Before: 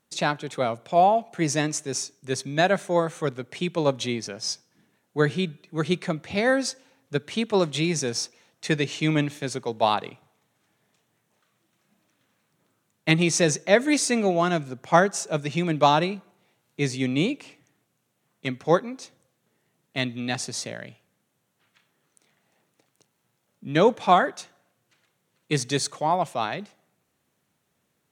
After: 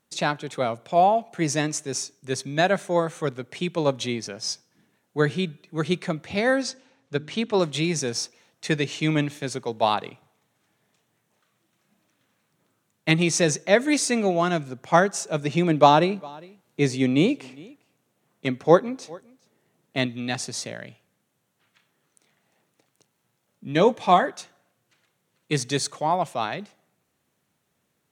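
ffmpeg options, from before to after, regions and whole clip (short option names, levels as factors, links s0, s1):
-filter_complex "[0:a]asettb=1/sr,asplit=3[s0][s1][s2];[s0]atrim=end=6.624[s3];[s1]atrim=start=6.62:end=7.59,asetpts=PTS-STARTPTS,afade=t=in:d=0.004:c=qsin,afade=t=out:st=0.966:d=0.004:c=qsin,lowpass=6800,bandreject=f=50.45:t=h:w=4,bandreject=f=100.9:t=h:w=4,bandreject=f=151.35:t=h:w=4,bandreject=f=201.8:t=h:w=4,bandreject=f=252.25:t=h:w=4,bandreject=f=302.7:t=h:w=4,bandreject=f=353.15:t=h:w=4[s4];[s2]atrim=start=7.586[s5];[s3][s4]acrossfade=d=0.004:c1=hsin:c2=qsin[s6];[s6][s5]acrossfade=d=0.004:c1=qsin:c2=hsin,asettb=1/sr,asplit=3[s7][s8][s9];[s7]atrim=end=15.414[s10];[s8]atrim=start=15.41:end=20.06,asetpts=PTS-STARTPTS,afade=t=in:d=0.004:c=qsin,afade=t=out:st=4.646:d=0.004:c=qsin,equalizer=f=410:w=0.45:g=5,aecho=1:1:405:0.0631,atrim=end_sample=205065[s11];[s9]atrim=start=20.056[s12];[s10][s11]acrossfade=d=0.004:c1=hsin:c2=qsin[s13];[s13][s12]acrossfade=d=0.004:c1=qsin:c2=hsin,asettb=1/sr,asplit=3[s14][s15][s16];[s14]atrim=end=23.724[s17];[s15]atrim=start=23.72:end=24.26,asetpts=PTS-STARTPTS,afade=t=in:d=0.004:c=qsin,afade=t=out:st=0.536:d=0.004:c=qsin,bandreject=f=1400:w=5.4,asplit=2[s18][s19];[s19]adelay=17,volume=0.251[s20];[s18][s20]amix=inputs=2:normalize=0,atrim=end_sample=23814[s21];[s16]atrim=start=24.256[s22];[s17][s21]acrossfade=d=0.004:c1=hsin:c2=qsin[s23];[s23][s22]acrossfade=d=0.004:c1=qsin:c2=hsin"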